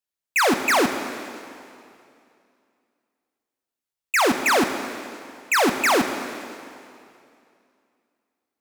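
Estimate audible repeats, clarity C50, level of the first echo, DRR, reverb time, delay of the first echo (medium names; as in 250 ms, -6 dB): no echo, 7.5 dB, no echo, 6.5 dB, 2.5 s, no echo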